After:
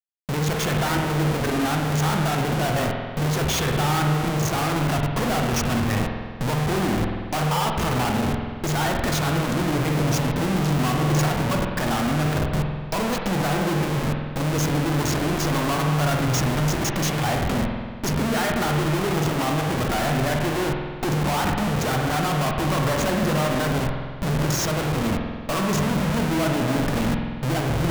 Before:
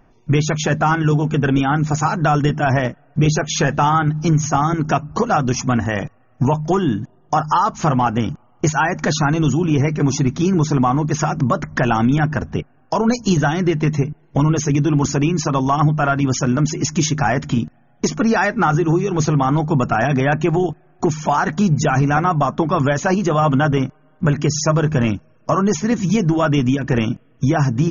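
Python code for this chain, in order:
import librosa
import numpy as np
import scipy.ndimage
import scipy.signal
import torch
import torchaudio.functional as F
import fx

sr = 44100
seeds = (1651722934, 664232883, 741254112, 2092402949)

y = fx.schmitt(x, sr, flips_db=-27.0)
y = fx.rev_spring(y, sr, rt60_s=1.7, pass_ms=(47,), chirp_ms=50, drr_db=2.0)
y = y * 10.0 ** (-6.5 / 20.0)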